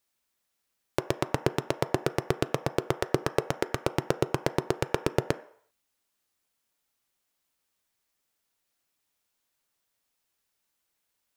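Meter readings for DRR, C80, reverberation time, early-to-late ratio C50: 11.0 dB, 19.0 dB, 0.60 s, 16.0 dB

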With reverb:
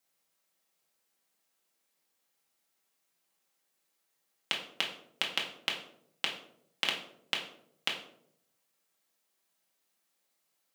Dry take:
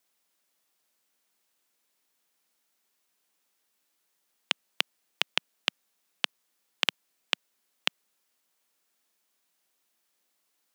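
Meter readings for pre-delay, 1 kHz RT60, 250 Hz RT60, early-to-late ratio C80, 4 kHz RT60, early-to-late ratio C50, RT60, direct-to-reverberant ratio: 4 ms, 0.60 s, 0.90 s, 10.5 dB, 0.40 s, 7.0 dB, 0.70 s, -2.0 dB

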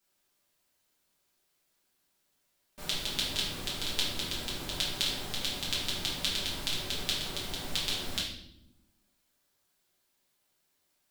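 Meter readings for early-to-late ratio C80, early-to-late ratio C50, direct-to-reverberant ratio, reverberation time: 7.5 dB, 3.5 dB, -7.5 dB, 0.80 s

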